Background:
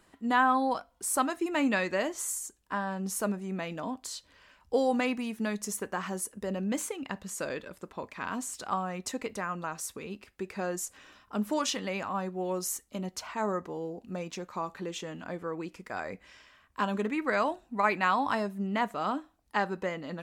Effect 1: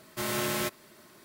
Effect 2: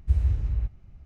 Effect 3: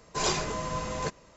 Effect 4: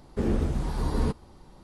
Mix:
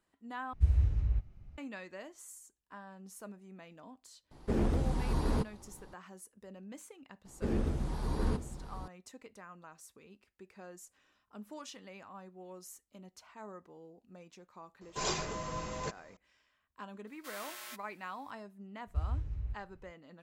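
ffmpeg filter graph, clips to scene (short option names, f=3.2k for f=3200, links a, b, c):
-filter_complex "[2:a]asplit=2[a][b];[4:a]asplit=2[c][d];[0:a]volume=-17dB[e];[c]aeval=exprs='0.106*(abs(mod(val(0)/0.106+3,4)-2)-1)':c=same[f];[d]aecho=1:1:708:0.299[g];[1:a]highpass=930[h];[e]asplit=2[i][j];[i]atrim=end=0.534[k];[a]atrim=end=1.05,asetpts=PTS-STARTPTS,volume=-4dB[l];[j]atrim=start=1.576[m];[f]atrim=end=1.63,asetpts=PTS-STARTPTS,volume=-3.5dB,afade=t=in:d=0.004:c=hsin,afade=t=out:st=1.626:d=0.004:c=hsin,adelay=4310[n];[g]atrim=end=1.63,asetpts=PTS-STARTPTS,volume=-6.5dB,afade=t=in:d=0.004:c=hsin,afade=t=out:st=1.626:d=0.004:c=hsin,adelay=7250[o];[3:a]atrim=end=1.36,asetpts=PTS-STARTPTS,volume=-6.5dB,afade=t=in:d=0.004:c=hsin,afade=t=out:st=1.356:d=0.004:c=hsin,adelay=14810[p];[h]atrim=end=1.24,asetpts=PTS-STARTPTS,volume=-13.5dB,afade=t=in:d=0.004:c=hsin,afade=t=out:st=1.236:d=0.004:c=hsin,adelay=17070[q];[b]atrim=end=1.05,asetpts=PTS-STARTPTS,volume=-11.5dB,afade=t=in:d=0.004:c=hsin,afade=t=out:st=1.046:d=0.004:c=hsin,adelay=18870[r];[k][l]acrossfade=d=0.004:c1=hsin:c2=hsin[s];[s][m]acrossfade=d=0.004:c1=hsin:c2=hsin[t];[t][n][o][p][q][r]amix=inputs=6:normalize=0"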